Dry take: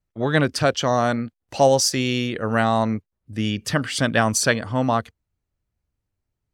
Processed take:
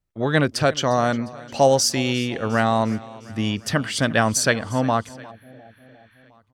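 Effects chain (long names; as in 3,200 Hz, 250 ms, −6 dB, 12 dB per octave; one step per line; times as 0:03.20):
repeating echo 354 ms, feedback 59%, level −20 dB
healed spectral selection 0:05.34–0:06.23, 860–9,900 Hz after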